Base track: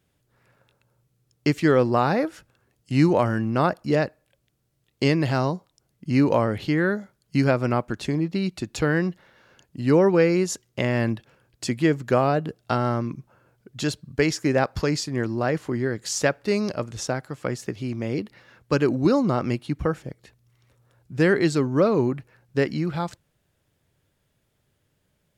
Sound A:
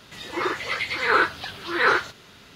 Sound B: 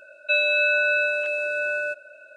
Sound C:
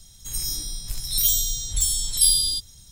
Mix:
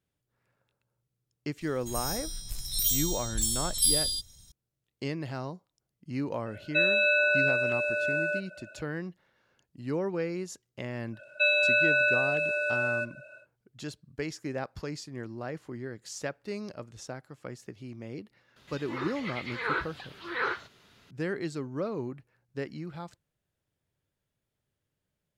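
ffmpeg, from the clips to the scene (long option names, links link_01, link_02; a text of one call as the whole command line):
ffmpeg -i bed.wav -i cue0.wav -i cue1.wav -i cue2.wav -filter_complex "[2:a]asplit=2[link_01][link_02];[0:a]volume=-13.5dB[link_03];[link_01]lowshelf=frequency=290:gain=10.5[link_04];[1:a]acrossover=split=4800[link_05][link_06];[link_06]acompressor=threshold=-52dB:ratio=4:attack=1:release=60[link_07];[link_05][link_07]amix=inputs=2:normalize=0[link_08];[3:a]atrim=end=2.91,asetpts=PTS-STARTPTS,volume=-6.5dB,afade=type=in:duration=0.004:curve=hsin,afade=type=out:start_time=2.906:duration=0.004:curve=hsin,adelay=1610[link_09];[link_04]atrim=end=2.36,asetpts=PTS-STARTPTS,volume=-4dB,afade=type=in:duration=0.004:curve=hsin,afade=type=out:start_time=2.356:duration=0.004:curve=hsin,adelay=6460[link_10];[link_02]atrim=end=2.36,asetpts=PTS-STARTPTS,volume=-3dB,afade=type=in:duration=0.1,afade=type=out:start_time=2.26:duration=0.1,adelay=11110[link_11];[link_08]atrim=end=2.55,asetpts=PTS-STARTPTS,volume=-11dB,afade=type=in:duration=0.004:curve=hsin,afade=type=out:start_time=2.546:duration=0.004:curve=hsin,adelay=18560[link_12];[link_03][link_09][link_10][link_11][link_12]amix=inputs=5:normalize=0" out.wav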